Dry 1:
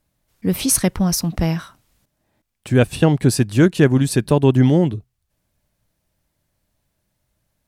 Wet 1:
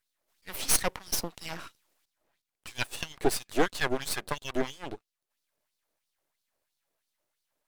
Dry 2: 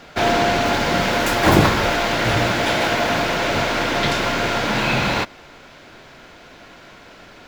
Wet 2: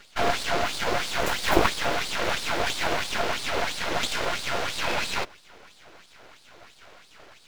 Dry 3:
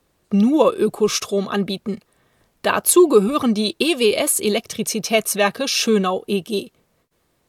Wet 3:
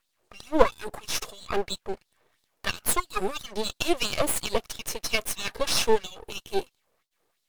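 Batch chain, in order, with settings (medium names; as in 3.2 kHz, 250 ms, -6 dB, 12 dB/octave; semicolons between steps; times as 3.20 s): LFO high-pass sine 3 Hz 380–4400 Hz; half-wave rectifier; trim -4.5 dB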